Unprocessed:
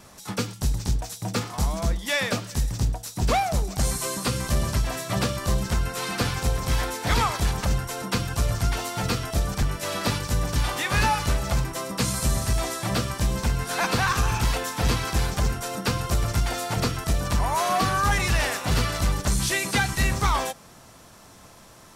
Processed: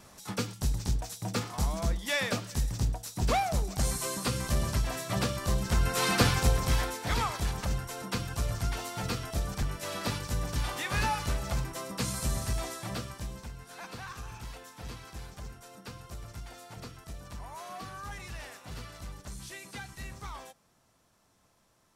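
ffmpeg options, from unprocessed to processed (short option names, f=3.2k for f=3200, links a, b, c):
-af "volume=2.5dB,afade=t=in:st=5.64:d=0.43:silence=0.421697,afade=t=out:st=6.07:d=0.96:silence=0.316228,afade=t=out:st=12.48:d=1.03:silence=0.251189"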